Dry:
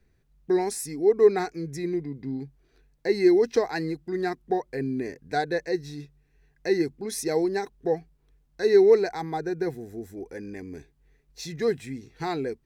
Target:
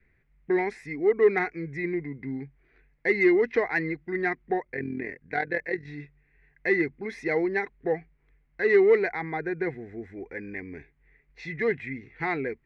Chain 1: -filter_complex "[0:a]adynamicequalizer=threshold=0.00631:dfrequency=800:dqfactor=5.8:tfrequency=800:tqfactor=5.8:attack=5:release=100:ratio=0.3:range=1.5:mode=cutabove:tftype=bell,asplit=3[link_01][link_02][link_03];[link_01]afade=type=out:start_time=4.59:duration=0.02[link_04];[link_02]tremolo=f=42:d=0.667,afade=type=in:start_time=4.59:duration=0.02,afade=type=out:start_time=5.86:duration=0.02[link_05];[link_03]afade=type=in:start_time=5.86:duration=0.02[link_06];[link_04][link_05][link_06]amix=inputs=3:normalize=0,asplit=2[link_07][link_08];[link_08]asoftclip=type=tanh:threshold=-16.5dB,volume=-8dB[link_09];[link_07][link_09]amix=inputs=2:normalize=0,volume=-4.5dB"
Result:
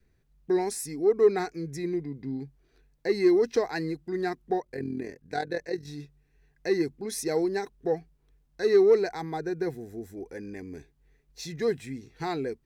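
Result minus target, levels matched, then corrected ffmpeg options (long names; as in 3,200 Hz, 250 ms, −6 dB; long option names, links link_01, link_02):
2,000 Hz band −10.0 dB
-filter_complex "[0:a]adynamicequalizer=threshold=0.00631:dfrequency=800:dqfactor=5.8:tfrequency=800:tqfactor=5.8:attack=5:release=100:ratio=0.3:range=1.5:mode=cutabove:tftype=bell,lowpass=frequency=2100:width_type=q:width=5.8,asplit=3[link_01][link_02][link_03];[link_01]afade=type=out:start_time=4.59:duration=0.02[link_04];[link_02]tremolo=f=42:d=0.667,afade=type=in:start_time=4.59:duration=0.02,afade=type=out:start_time=5.86:duration=0.02[link_05];[link_03]afade=type=in:start_time=5.86:duration=0.02[link_06];[link_04][link_05][link_06]amix=inputs=3:normalize=0,asplit=2[link_07][link_08];[link_08]asoftclip=type=tanh:threshold=-16.5dB,volume=-8dB[link_09];[link_07][link_09]amix=inputs=2:normalize=0,volume=-4.5dB"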